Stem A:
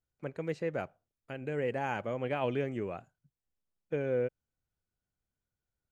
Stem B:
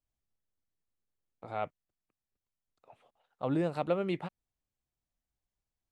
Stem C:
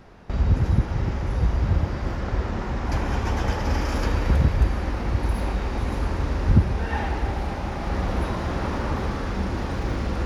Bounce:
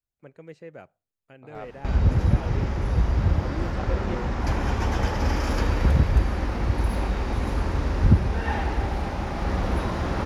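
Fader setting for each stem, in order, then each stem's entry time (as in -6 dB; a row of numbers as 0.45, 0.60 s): -8.0, -5.5, 0.0 dB; 0.00, 0.00, 1.55 s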